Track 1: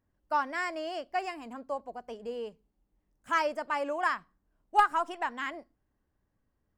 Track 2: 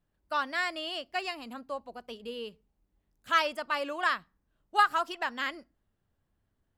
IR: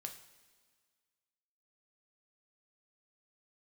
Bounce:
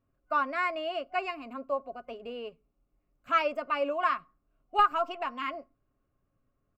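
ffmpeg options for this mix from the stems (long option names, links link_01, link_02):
-filter_complex "[0:a]lowpass=1200,aecho=1:1:7.4:0.37,volume=1dB[link_01];[1:a]volume=-1,volume=-12.5dB[link_02];[link_01][link_02]amix=inputs=2:normalize=0,superequalizer=8b=1.41:9b=0.562:10b=2.24:12b=2.82:16b=0.251"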